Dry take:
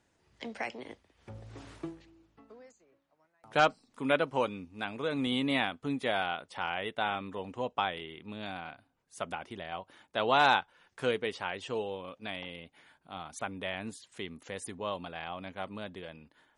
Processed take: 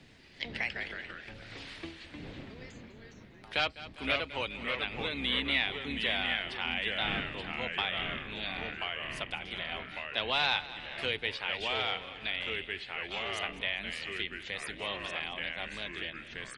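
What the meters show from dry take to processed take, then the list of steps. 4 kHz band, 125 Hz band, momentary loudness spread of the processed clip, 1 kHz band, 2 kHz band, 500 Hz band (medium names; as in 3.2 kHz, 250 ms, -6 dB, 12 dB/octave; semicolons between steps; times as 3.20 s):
+6.5 dB, -1.5 dB, 15 LU, -6.5 dB, +3.0 dB, -6.0 dB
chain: octave divider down 2 oct, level -1 dB; wind noise 210 Hz -44 dBFS; bass shelf 240 Hz -5 dB; saturation -13 dBFS, distortion -22 dB; high-order bell 3 kHz +13 dB; feedback delay 201 ms, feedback 52%, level -17.5 dB; ever faster or slower copies 81 ms, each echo -2 st, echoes 3, each echo -6 dB; three bands compressed up and down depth 40%; trim -6.5 dB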